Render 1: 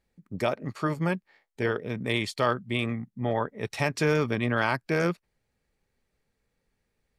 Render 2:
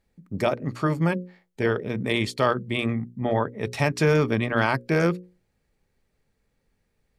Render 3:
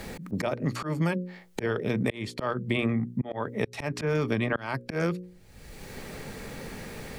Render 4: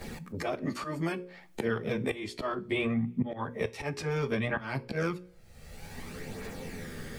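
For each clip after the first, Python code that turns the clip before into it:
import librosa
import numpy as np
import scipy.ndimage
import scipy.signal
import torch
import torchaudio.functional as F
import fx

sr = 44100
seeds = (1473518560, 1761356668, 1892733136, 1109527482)

y1 = fx.low_shelf(x, sr, hz=490.0, db=4.5)
y1 = fx.hum_notches(y1, sr, base_hz=60, count=9)
y1 = F.gain(torch.from_numpy(y1), 2.0).numpy()
y2 = fx.auto_swell(y1, sr, attack_ms=706.0)
y2 = fx.band_squash(y2, sr, depth_pct=100)
y2 = F.gain(torch.from_numpy(y2), 6.0).numpy()
y3 = fx.chorus_voices(y2, sr, voices=2, hz=0.31, base_ms=13, depth_ms=1.7, mix_pct=65)
y3 = fx.rev_double_slope(y3, sr, seeds[0], early_s=0.29, late_s=2.1, knee_db=-28, drr_db=12.5)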